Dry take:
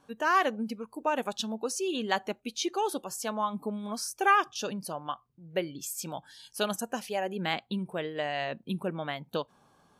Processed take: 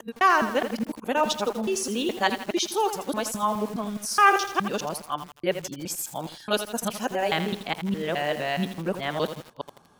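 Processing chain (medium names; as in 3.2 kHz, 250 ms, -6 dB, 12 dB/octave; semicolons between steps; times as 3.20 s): time reversed locally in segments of 209 ms; bit-crushed delay 82 ms, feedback 55%, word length 7-bit, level -9 dB; trim +5 dB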